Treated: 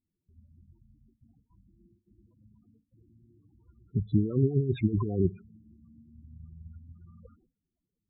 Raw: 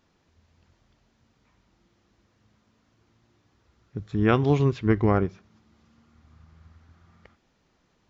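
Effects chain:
compressor whose output falls as the input rises −25 dBFS, ratio −0.5
noise gate with hold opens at −51 dBFS
spectral peaks only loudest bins 8
level +1.5 dB

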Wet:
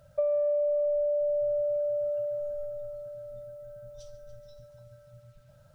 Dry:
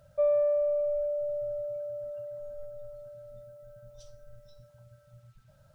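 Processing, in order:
on a send: echo machine with several playback heads 143 ms, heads first and second, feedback 59%, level −17 dB
on the sum: dynamic equaliser 620 Hz, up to +5 dB, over −40 dBFS
downward compressor 6 to 1, threshold −27 dBFS, peak gain reduction 9 dB
level +1.5 dB

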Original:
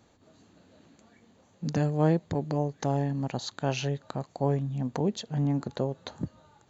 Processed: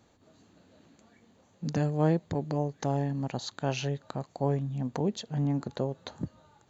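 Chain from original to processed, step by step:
level −1.5 dB

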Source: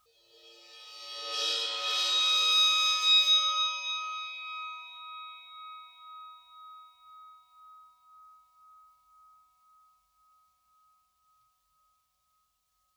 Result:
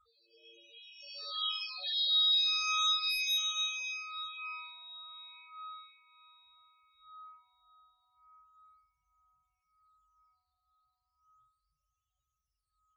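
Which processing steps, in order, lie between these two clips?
soft clipping −17.5 dBFS, distortion −20 dB
all-pass phaser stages 8, 0.35 Hz, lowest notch 330–1,500 Hz
spectral peaks only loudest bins 16

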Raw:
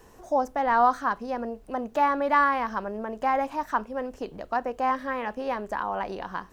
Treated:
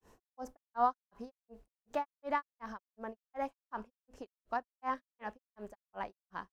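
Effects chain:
granular cloud 205 ms, grains 2.7 per second, spray 14 ms, pitch spread up and down by 0 semitones
level −7.5 dB

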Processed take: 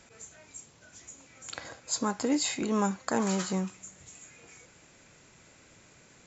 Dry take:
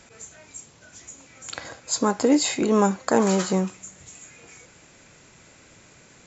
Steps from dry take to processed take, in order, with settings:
dynamic equaliser 470 Hz, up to −6 dB, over −34 dBFS, Q 0.91
level −5.5 dB

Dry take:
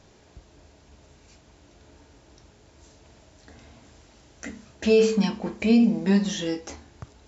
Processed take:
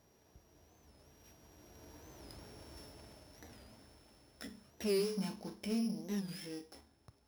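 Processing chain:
samples sorted by size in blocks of 8 samples
source passing by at 0:02.50, 11 m/s, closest 5.1 metres
in parallel at −4.5 dB: soft clipping −39 dBFS, distortion −7 dB
on the sum: low-shelf EQ 71 Hz −5.5 dB
wow of a warped record 45 rpm, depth 160 cents
level −2 dB

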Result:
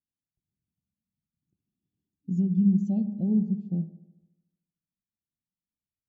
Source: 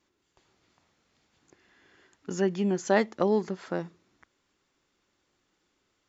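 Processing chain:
low shelf with overshoot 290 Hz +13.5 dB, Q 1.5
hum removal 205.2 Hz, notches 31
brickwall limiter −13.5 dBFS, peak gain reduction 7.5 dB
linear-phase brick-wall band-stop 860–2,400 Hz
delay with a low-pass on its return 74 ms, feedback 71%, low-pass 1,000 Hz, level −9.5 dB
every bin expanded away from the loudest bin 1.5 to 1
level −4 dB

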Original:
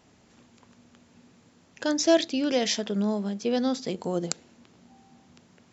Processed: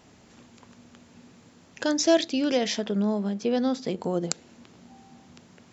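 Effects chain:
0:02.57–0:04.31: high-shelf EQ 4,100 Hz −8 dB
in parallel at −1 dB: downward compressor, threshold −34 dBFS, peak gain reduction 18 dB
on the sum: level −1 dB

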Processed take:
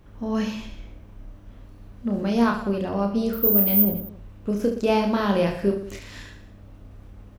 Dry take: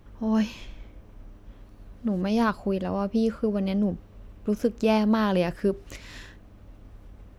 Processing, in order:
0:03.33–0:03.82: bad sample-rate conversion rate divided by 3×, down filtered, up zero stuff
reverse bouncing-ball delay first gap 30 ms, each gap 1.3×, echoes 5

